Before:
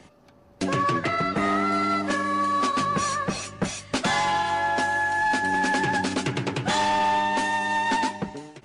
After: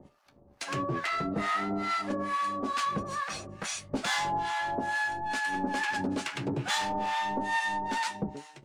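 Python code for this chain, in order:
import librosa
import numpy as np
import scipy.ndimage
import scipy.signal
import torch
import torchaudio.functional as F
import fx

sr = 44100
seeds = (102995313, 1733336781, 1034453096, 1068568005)

y = fx.leveller(x, sr, passes=1)
y = fx.comb_fb(y, sr, f0_hz=70.0, decay_s=0.21, harmonics='all', damping=0.0, mix_pct=60)
y = fx.harmonic_tremolo(y, sr, hz=2.3, depth_pct=100, crossover_hz=830.0)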